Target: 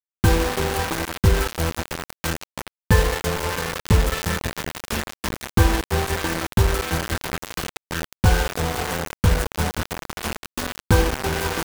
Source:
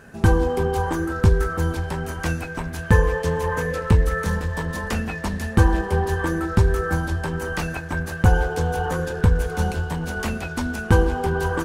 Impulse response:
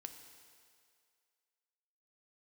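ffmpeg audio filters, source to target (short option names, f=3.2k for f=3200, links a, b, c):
-af "aeval=exprs='sgn(val(0))*max(abs(val(0))-0.0282,0)':c=same,acrusher=bits=3:mix=0:aa=0.000001"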